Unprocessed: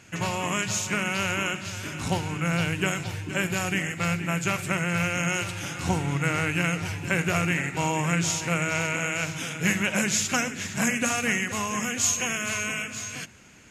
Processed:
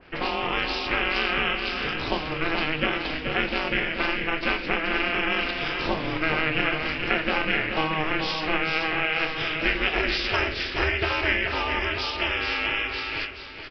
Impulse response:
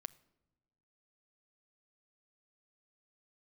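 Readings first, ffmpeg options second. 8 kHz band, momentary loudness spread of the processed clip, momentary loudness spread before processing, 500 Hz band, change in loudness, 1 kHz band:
under -25 dB, 4 LU, 7 LU, +3.0 dB, +1.5 dB, +2.5 dB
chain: -filter_complex "[0:a]highpass=f=400:p=1,tiltshelf=f=1.2k:g=5,asplit=2[a][b];[b]acompressor=threshold=-34dB:ratio=6,volume=2.5dB[c];[a][c]amix=inputs=2:normalize=0,aeval=exprs='val(0)*sin(2*PI*160*n/s)':c=same,asplit=2[d][e];[e]adelay=26,volume=-10.5dB[f];[d][f]amix=inputs=2:normalize=0,asplit=2[g][h];[h]aecho=0:1:429:0.473[i];[g][i]amix=inputs=2:normalize=0,aresample=11025,aresample=44100,adynamicequalizer=threshold=0.00794:dfrequency=2000:dqfactor=0.7:tfrequency=2000:tqfactor=0.7:attack=5:release=100:ratio=0.375:range=4:mode=boostabove:tftype=highshelf"

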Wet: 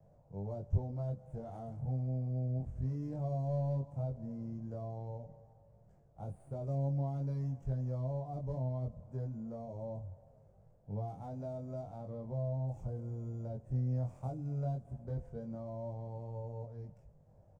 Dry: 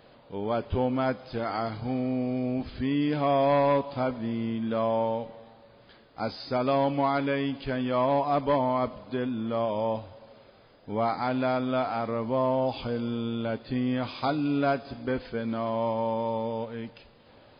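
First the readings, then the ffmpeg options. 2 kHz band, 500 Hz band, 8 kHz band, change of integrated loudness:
under -30 dB, -16.5 dB, n/a, -11.0 dB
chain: -filter_complex "[0:a]firequalizer=gain_entry='entry(160,0);entry(250,-20);entry(640,-10);entry(1200,-26)':delay=0.05:min_phase=1,acrossover=split=160|850|1900[a][b][c][d];[d]aeval=exprs='abs(val(0))':c=same[e];[a][b][c][e]amix=inputs=4:normalize=0,acrossover=split=460|3000[f][g][h];[g]acompressor=threshold=-49dB:ratio=6[i];[f][i][h]amix=inputs=3:normalize=0,flanger=delay=20:depth=3.4:speed=0.18,volume=3.5dB"

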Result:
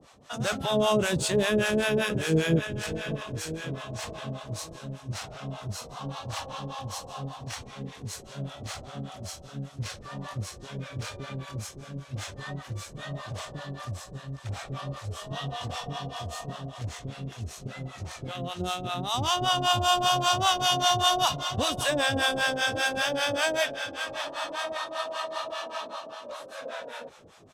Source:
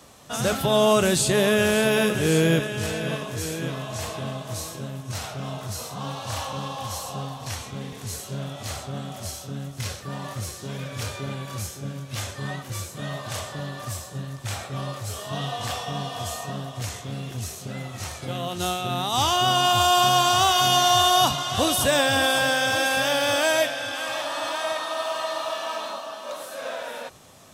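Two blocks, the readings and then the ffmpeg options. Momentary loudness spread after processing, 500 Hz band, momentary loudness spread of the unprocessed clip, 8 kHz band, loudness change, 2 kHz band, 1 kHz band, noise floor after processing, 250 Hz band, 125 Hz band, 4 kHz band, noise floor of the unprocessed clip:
16 LU, -5.5 dB, 15 LU, -7.0 dB, -5.0 dB, -4.5 dB, -5.5 dB, -47 dBFS, -4.5 dB, -4.0 dB, -4.5 dB, -40 dBFS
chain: -filter_complex "[0:a]asplit=6[a][b][c][d][e][f];[b]adelay=195,afreqshift=-69,volume=-19dB[g];[c]adelay=390,afreqshift=-138,volume=-23.9dB[h];[d]adelay=585,afreqshift=-207,volume=-28.8dB[i];[e]adelay=780,afreqshift=-276,volume=-33.6dB[j];[f]adelay=975,afreqshift=-345,volume=-38.5dB[k];[a][g][h][i][j][k]amix=inputs=6:normalize=0,acrossover=split=610[l][m];[l]aeval=exprs='val(0)*(1-1/2+1/2*cos(2*PI*5.1*n/s))':c=same[n];[m]aeval=exprs='val(0)*(1-1/2-1/2*cos(2*PI*5.1*n/s))':c=same[o];[n][o]amix=inputs=2:normalize=0,adynamicsmooth=sensitivity=6:basefreq=7.3k"

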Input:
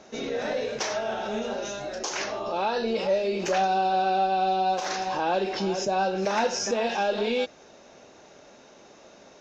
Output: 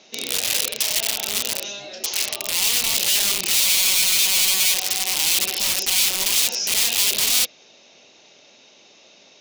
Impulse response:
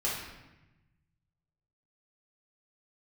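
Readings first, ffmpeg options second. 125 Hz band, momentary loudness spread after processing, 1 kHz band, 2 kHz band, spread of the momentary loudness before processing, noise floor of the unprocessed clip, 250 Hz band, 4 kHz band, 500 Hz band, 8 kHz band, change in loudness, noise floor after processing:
-5.0 dB, 8 LU, -12.0 dB, +7.0 dB, 7 LU, -52 dBFS, -9.0 dB, +16.5 dB, -11.5 dB, n/a, +9.0 dB, -52 dBFS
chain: -af "highpass=110,lowpass=3.6k,aeval=exprs='(mod(15.8*val(0)+1,2)-1)/15.8':c=same,aexciter=amount=5.3:drive=7.6:freq=2.3k,volume=-5dB"

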